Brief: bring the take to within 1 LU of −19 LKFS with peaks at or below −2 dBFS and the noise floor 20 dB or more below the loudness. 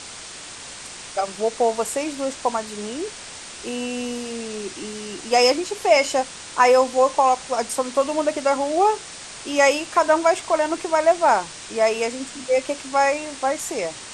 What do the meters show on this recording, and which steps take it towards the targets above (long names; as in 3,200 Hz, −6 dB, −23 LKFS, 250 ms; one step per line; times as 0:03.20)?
background noise floor −38 dBFS; target noise floor −42 dBFS; integrated loudness −21.5 LKFS; sample peak −3.0 dBFS; target loudness −19.0 LKFS
→ noise reduction from a noise print 6 dB
level +2.5 dB
brickwall limiter −2 dBFS